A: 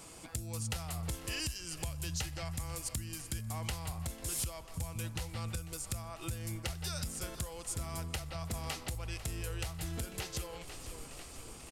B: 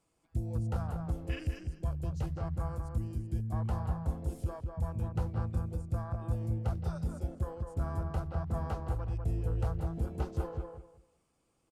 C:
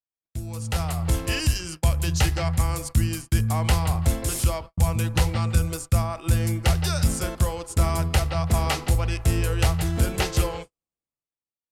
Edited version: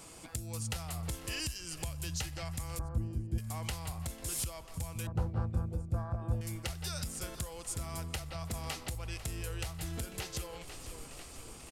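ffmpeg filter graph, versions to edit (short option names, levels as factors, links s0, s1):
-filter_complex "[1:a]asplit=2[s0][s1];[0:a]asplit=3[s2][s3][s4];[s2]atrim=end=2.792[s5];[s0]atrim=start=2.788:end=3.382[s6];[s3]atrim=start=3.378:end=5.072[s7];[s1]atrim=start=5.068:end=6.412[s8];[s4]atrim=start=6.408[s9];[s5][s6]acrossfade=d=0.004:c1=hsin:c2=hsin[s10];[s10][s7]acrossfade=d=0.004:c1=hsin:c2=hsin[s11];[s11][s8]acrossfade=d=0.004:c1=hsin:c2=hsin[s12];[s12][s9]acrossfade=d=0.004:c1=hsin:c2=hsin"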